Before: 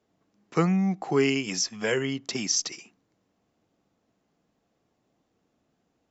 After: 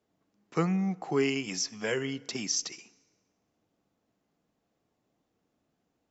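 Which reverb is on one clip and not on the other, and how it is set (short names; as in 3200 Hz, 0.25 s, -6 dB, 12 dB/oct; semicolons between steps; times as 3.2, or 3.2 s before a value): FDN reverb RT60 1.7 s, low-frequency decay 0.7×, high-frequency decay 0.7×, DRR 19.5 dB; gain -4.5 dB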